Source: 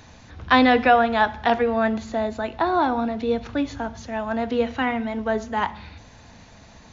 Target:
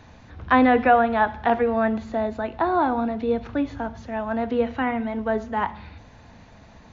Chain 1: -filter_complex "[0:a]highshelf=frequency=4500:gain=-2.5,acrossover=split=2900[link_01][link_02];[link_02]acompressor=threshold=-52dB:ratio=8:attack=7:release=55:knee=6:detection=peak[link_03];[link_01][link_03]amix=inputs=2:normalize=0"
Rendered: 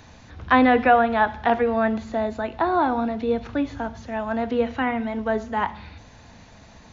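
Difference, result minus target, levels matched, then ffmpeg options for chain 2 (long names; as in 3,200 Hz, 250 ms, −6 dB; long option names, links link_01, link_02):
8,000 Hz band +4.5 dB
-filter_complex "[0:a]highshelf=frequency=4500:gain=-14,acrossover=split=2900[link_01][link_02];[link_02]acompressor=threshold=-52dB:ratio=8:attack=7:release=55:knee=6:detection=peak[link_03];[link_01][link_03]amix=inputs=2:normalize=0"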